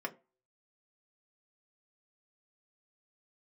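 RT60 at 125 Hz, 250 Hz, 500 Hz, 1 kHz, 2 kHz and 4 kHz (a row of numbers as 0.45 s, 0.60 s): 0.25 s, 0.30 s, 0.35 s, 0.30 s, 0.25 s, 0.15 s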